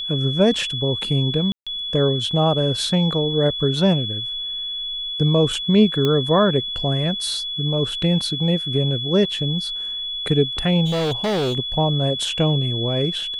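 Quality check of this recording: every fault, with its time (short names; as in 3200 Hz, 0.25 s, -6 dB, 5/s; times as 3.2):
tone 3400 Hz -25 dBFS
1.52–1.67 gap 0.146 s
6.05 pop -9 dBFS
10.85–11.55 clipped -18.5 dBFS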